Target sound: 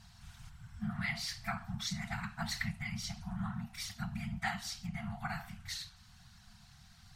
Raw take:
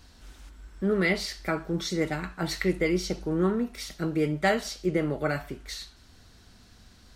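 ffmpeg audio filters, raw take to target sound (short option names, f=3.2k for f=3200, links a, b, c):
-af "afftfilt=real='hypot(re,im)*cos(2*PI*random(0))':imag='hypot(re,im)*sin(2*PI*random(1))':win_size=512:overlap=0.75,acompressor=threshold=-35dB:ratio=2.5,afftfilt=real='re*(1-between(b*sr/4096,230,670))':imag='im*(1-between(b*sr/4096,230,670))':win_size=4096:overlap=0.75,volume=2.5dB"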